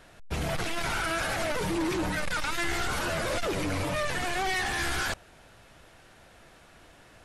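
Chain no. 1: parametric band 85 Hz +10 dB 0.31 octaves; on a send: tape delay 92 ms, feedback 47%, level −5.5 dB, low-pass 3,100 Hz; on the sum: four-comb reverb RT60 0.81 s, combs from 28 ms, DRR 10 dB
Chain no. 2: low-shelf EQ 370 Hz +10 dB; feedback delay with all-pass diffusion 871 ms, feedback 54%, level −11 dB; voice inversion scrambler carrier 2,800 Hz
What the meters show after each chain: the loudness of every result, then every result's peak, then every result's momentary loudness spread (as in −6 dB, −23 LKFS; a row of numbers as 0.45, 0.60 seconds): −28.5, −19.5 LKFS; −16.0, −9.5 dBFS; 3, 17 LU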